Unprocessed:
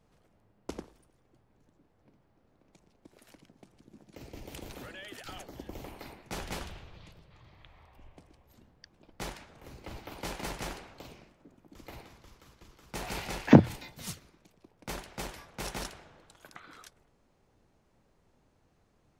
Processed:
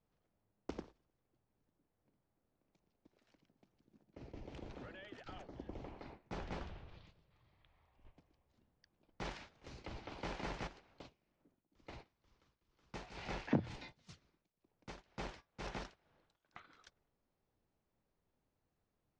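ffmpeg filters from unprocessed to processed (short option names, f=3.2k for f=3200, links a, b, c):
-filter_complex "[0:a]asettb=1/sr,asplit=3[a][b][c];[a]atrim=end=4.034[d];[b]atrim=start=4.03:end=6.89,asetpts=PTS-STARTPTS,afade=t=in:d=0.004:c=qsin,afade=t=out:st=2.856:d=0.004:c=qsin,highshelf=f=2.4k:g=-11.5[e];[c]atrim=start=6.886[f];[d][e]acrossfade=d=0.004:c1=hsin:c2=qsin[g];[g][f]acrossfade=d=0.004:c1=qsin:c2=hsin,asettb=1/sr,asplit=3[h][i][j];[h]atrim=end=9.254[k];[i]atrim=start=9.25:end=9.87,asetpts=PTS-STARTPTS,afade=t=in:d=0.004:c=qsin,afade=t=out:st=0.616:d=0.004:c=qsin,highshelf=f=2.5k:g=7.5[l];[j]atrim=start=9.866[m];[k][l]acrossfade=d=0.004:c1=hsin:c2=qsin[n];[n][m]acrossfade=d=0.004:c1=qsin:c2=hsin,asplit=3[o][p][q];[o]afade=t=out:st=10.66:d=0.02[r];[p]tremolo=f=2.1:d=0.79,afade=t=in:st=10.66:d=0.02,afade=t=out:st=16.52:d=0.02[s];[q]afade=t=in:st=16.52:d=0.02[t];[r][s][t]amix=inputs=3:normalize=0,agate=range=-11dB:threshold=-50dB:ratio=16:detection=peak,lowpass=f=6k:w=0.5412,lowpass=f=6k:w=1.3066,acrossover=split=2900[u][v];[v]acompressor=threshold=-50dB:ratio=4:attack=1:release=60[w];[u][w]amix=inputs=2:normalize=0,volume=-4.5dB"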